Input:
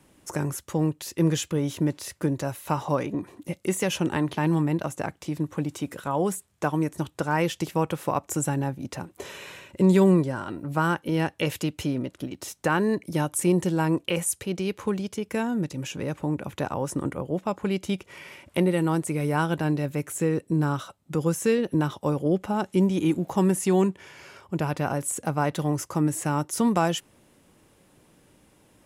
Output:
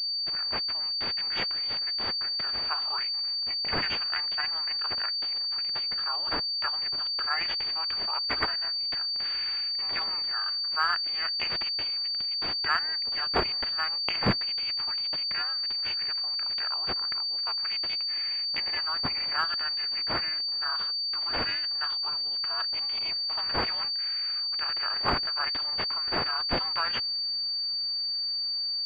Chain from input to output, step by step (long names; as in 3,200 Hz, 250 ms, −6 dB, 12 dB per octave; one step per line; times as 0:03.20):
high-pass filter 1,400 Hz 24 dB per octave
ring modulation 160 Hz
automatic gain control gain up to 8 dB
switching amplifier with a slow clock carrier 4,600 Hz